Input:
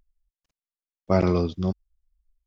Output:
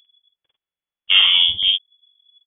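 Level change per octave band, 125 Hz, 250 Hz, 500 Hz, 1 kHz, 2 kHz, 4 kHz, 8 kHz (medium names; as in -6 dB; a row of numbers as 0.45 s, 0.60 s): under -20 dB, under -25 dB, under -25 dB, -4.5 dB, +19.5 dB, +35.0 dB, no reading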